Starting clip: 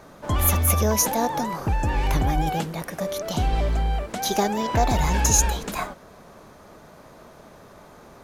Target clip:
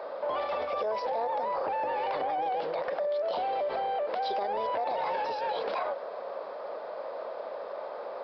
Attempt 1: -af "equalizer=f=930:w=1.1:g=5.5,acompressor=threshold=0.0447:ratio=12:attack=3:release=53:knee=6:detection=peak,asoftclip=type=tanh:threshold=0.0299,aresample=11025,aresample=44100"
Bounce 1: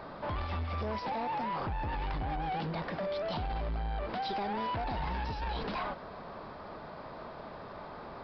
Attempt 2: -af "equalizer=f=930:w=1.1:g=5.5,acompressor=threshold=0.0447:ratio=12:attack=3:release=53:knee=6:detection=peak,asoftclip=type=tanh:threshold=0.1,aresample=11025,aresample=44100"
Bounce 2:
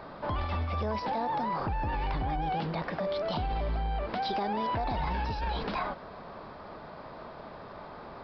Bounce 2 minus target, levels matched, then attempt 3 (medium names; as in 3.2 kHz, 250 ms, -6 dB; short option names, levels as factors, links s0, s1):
500 Hz band -5.5 dB
-af "highpass=f=530:t=q:w=5.2,equalizer=f=930:w=1.1:g=5.5,acompressor=threshold=0.0447:ratio=12:attack=3:release=53:knee=6:detection=peak,asoftclip=type=tanh:threshold=0.1,aresample=11025,aresample=44100"